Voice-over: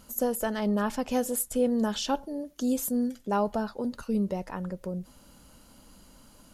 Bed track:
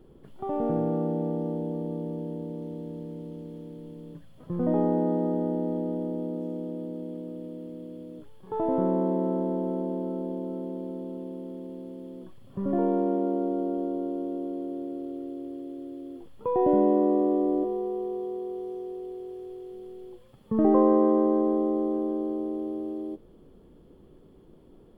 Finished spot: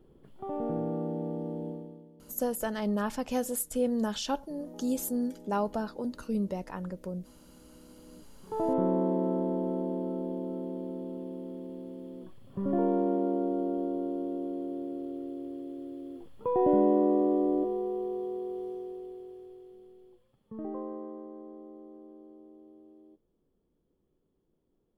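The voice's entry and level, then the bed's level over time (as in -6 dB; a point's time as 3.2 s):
2.20 s, -3.0 dB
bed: 1.69 s -5.5 dB
2.12 s -22.5 dB
7.38 s -22.5 dB
8.62 s -2 dB
18.66 s -2 dB
21.29 s -22 dB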